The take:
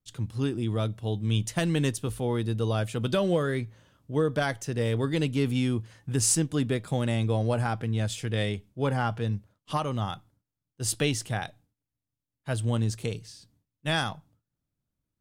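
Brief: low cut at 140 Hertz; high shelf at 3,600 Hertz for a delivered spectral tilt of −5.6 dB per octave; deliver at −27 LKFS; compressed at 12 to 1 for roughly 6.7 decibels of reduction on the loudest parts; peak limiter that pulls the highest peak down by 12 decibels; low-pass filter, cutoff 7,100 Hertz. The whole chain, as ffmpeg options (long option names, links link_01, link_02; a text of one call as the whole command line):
ffmpeg -i in.wav -af "highpass=140,lowpass=7100,highshelf=frequency=3600:gain=-8,acompressor=threshold=-28dB:ratio=12,volume=13dB,alimiter=limit=-16.5dB:level=0:latency=1" out.wav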